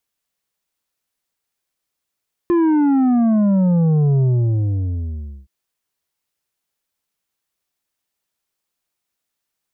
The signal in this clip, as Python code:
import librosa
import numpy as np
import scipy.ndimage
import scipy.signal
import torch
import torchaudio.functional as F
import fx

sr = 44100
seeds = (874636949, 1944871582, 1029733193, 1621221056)

y = fx.sub_drop(sr, level_db=-13, start_hz=350.0, length_s=2.97, drive_db=7.0, fade_s=1.26, end_hz=65.0)